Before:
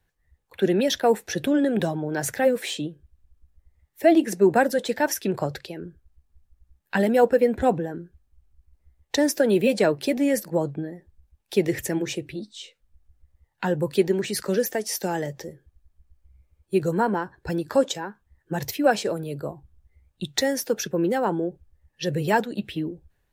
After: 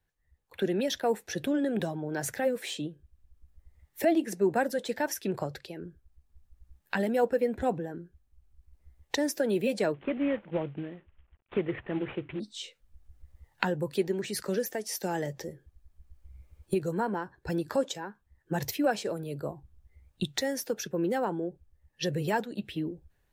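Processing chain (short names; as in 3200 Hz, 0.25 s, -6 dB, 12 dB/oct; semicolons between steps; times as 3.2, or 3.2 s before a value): 9.94–12.4 CVSD 16 kbps; recorder AGC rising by 8.1 dB/s; gain -8 dB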